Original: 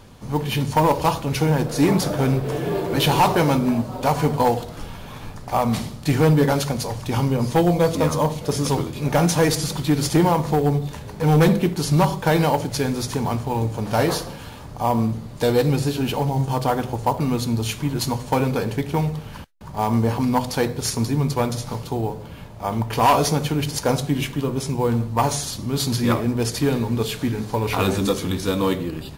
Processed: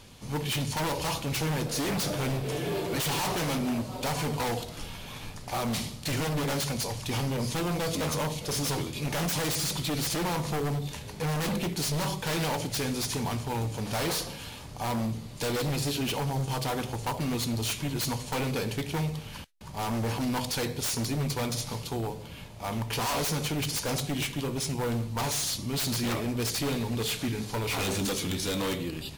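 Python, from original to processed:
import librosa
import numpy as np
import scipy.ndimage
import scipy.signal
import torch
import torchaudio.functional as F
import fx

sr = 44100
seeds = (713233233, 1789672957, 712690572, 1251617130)

y = 10.0 ** (-12.5 / 20.0) * np.tanh(x / 10.0 ** (-12.5 / 20.0))
y = fx.band_shelf(y, sr, hz=5200.0, db=8.0, octaves=2.9)
y = 10.0 ** (-18.0 / 20.0) * (np.abs((y / 10.0 ** (-18.0 / 20.0) + 3.0) % 4.0 - 2.0) - 1.0)
y = y * librosa.db_to_amplitude(-6.5)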